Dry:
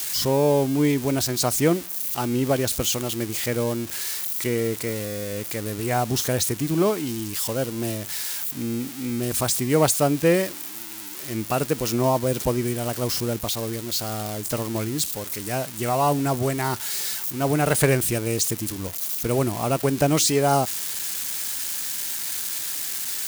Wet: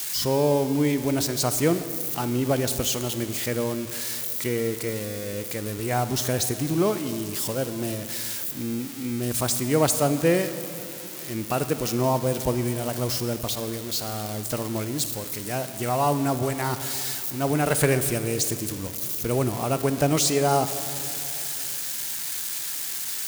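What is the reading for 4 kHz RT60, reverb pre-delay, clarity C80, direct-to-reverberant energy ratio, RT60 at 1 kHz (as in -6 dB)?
2.1 s, 38 ms, 11.5 dB, 10.5 dB, 2.6 s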